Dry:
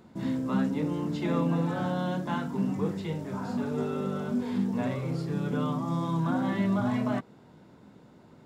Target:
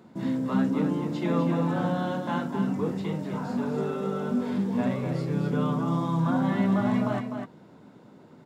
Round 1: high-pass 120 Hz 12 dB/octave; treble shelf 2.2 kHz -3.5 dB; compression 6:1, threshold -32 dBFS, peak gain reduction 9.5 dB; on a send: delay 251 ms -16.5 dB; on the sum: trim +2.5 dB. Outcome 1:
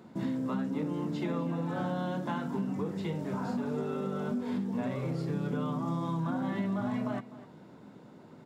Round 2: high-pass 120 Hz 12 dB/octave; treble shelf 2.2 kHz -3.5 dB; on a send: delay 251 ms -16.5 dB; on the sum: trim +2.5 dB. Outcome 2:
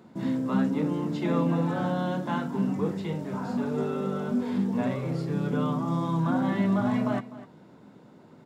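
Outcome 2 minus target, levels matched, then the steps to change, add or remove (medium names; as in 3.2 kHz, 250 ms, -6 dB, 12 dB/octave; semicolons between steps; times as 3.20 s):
echo-to-direct -9.5 dB
change: delay 251 ms -7 dB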